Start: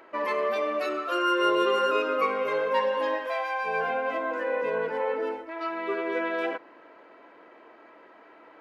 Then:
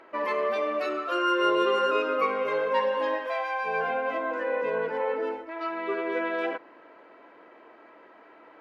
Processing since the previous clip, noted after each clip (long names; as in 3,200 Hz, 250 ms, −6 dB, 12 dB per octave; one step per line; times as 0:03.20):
high-shelf EQ 8,800 Hz −11 dB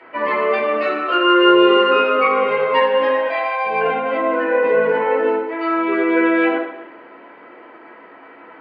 convolution reverb RT60 0.85 s, pre-delay 3 ms, DRR −5.5 dB
level −5 dB